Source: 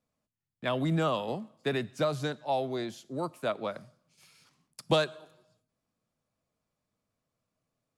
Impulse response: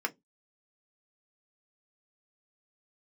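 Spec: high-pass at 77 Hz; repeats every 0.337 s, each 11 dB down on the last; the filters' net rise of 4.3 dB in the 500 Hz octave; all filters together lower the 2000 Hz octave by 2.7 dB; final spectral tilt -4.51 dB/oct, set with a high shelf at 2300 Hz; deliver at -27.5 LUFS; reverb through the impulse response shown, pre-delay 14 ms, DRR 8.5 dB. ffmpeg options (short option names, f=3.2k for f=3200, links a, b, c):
-filter_complex "[0:a]highpass=77,equalizer=f=500:t=o:g=5.5,equalizer=f=2k:t=o:g=-7.5,highshelf=f=2.3k:g=6,aecho=1:1:337|674|1011:0.282|0.0789|0.0221,asplit=2[a][b];[1:a]atrim=start_sample=2205,adelay=14[c];[b][c]afir=irnorm=-1:irlink=0,volume=-14.5dB[d];[a][d]amix=inputs=2:normalize=0,volume=1.5dB"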